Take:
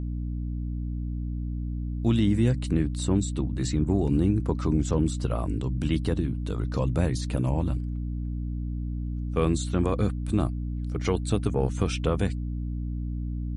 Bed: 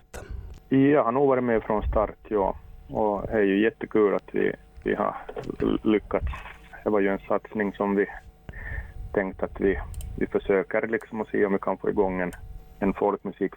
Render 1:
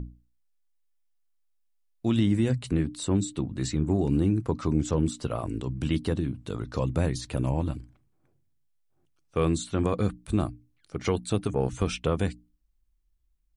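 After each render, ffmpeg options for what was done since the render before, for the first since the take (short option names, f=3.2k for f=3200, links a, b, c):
-af "bandreject=f=60:t=h:w=6,bandreject=f=120:t=h:w=6,bandreject=f=180:t=h:w=6,bandreject=f=240:t=h:w=6,bandreject=f=300:t=h:w=6"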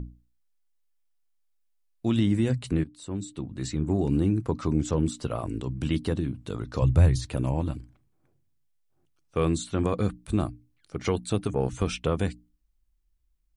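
-filter_complex "[0:a]asettb=1/sr,asplit=3[a][b][c];[a]atrim=end=6.824[d];[b]atrim=start=6.82:end=7.26,asetpts=PTS-STARTPTS,afade=t=in:d=0.004:c=qsin,afade=t=out:st=0.436:d=0.004:c=qsin,lowshelf=f=150:t=q:w=1.5:g=8.5[e];[c]atrim=start=7.256[f];[d][e]acrossfade=d=0.004:c1=hsin:c2=qsin[g];[g][f]acrossfade=d=0.004:c1=qsin:c2=hsin,asplit=2[h][i];[h]atrim=end=2.84,asetpts=PTS-STARTPTS,afade=t=out:st=2.836:d=0.004:c=hsin:silence=0.177828[j];[i]atrim=start=2.84,asetpts=PTS-STARTPTS,afade=t=in:d=1.18:silence=0.177828[k];[j][k]concat=n=2:v=0:a=1"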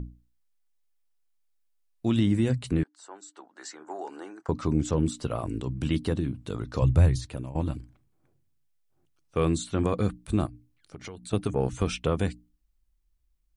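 -filter_complex "[0:a]asettb=1/sr,asplit=3[a][b][c];[a]atrim=end=2.834[d];[b]atrim=start=2.83:end=4.49,asetpts=PTS-STARTPTS,afade=t=in:d=0.004:c=qsin,afade=t=out:st=1.656:d=0.004:c=qsin,highpass=f=500:w=0.5412,highpass=f=500:w=1.3066,equalizer=f=510:t=q:w=4:g=-6,equalizer=f=850:t=q:w=4:g=6,equalizer=f=1.5k:t=q:w=4:g=8,equalizer=f=2.5k:t=q:w=4:g=-10,equalizer=f=3.7k:t=q:w=4:g=-10,lowpass=f=7.6k:w=0.5412,lowpass=f=7.6k:w=1.3066[e];[c]atrim=start=4.486[f];[d][e]acrossfade=d=0.004:c1=hsin:c2=qsin[g];[g][f]acrossfade=d=0.004:c1=qsin:c2=hsin,asettb=1/sr,asplit=3[h][i][j];[h]atrim=end=10.464[k];[i]atrim=start=10.46:end=11.33,asetpts=PTS-STARTPTS,afade=t=in:d=0.004:c=qsin,afade=t=out:st=0.866:d=0.004:c=qsin,acompressor=threshold=-38dB:ratio=6:attack=3.2:release=140:knee=1:detection=peak[l];[j]atrim=start=11.326[m];[k][l]acrossfade=d=0.004:c1=hsin:c2=qsin[n];[n][m]acrossfade=d=0.004:c1=qsin:c2=hsin,asplit=2[o][p];[o]atrim=end=7.55,asetpts=PTS-STARTPTS,afade=t=out:st=6.81:d=0.74:c=qsin:silence=0.158489[q];[p]atrim=start=7.55,asetpts=PTS-STARTPTS,afade=t=in:d=0.004:c=hsin:silence=0.158489[r];[q][r]concat=n=2:v=0:a=1"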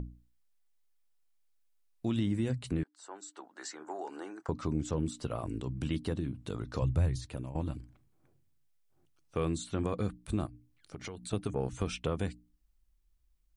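-af "acompressor=threshold=-41dB:ratio=1.5"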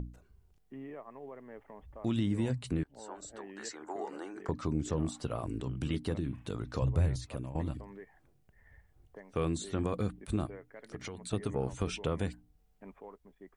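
-filter_complex "[1:a]volume=-26dB[a];[0:a][a]amix=inputs=2:normalize=0"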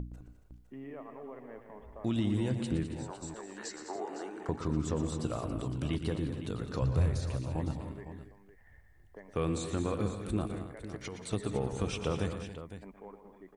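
-af "aecho=1:1:117|181|207|277|508:0.299|0.133|0.282|0.2|0.251"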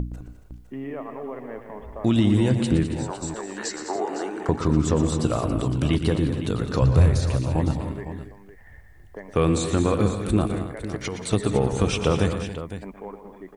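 -af "volume=11.5dB"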